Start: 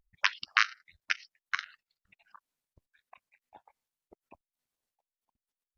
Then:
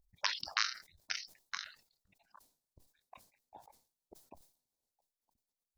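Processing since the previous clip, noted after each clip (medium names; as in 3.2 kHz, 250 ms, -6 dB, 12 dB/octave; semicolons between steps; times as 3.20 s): high-order bell 1.9 kHz -11.5 dB; decay stretcher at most 130 dB/s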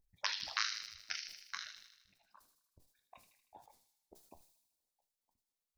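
feedback echo behind a high-pass 78 ms, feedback 60%, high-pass 2.5 kHz, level -5.5 dB; flange 1.1 Hz, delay 9.7 ms, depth 6.4 ms, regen -65%; trim +1.5 dB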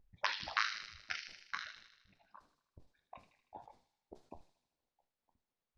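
tape spacing loss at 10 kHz 28 dB; trim +8.5 dB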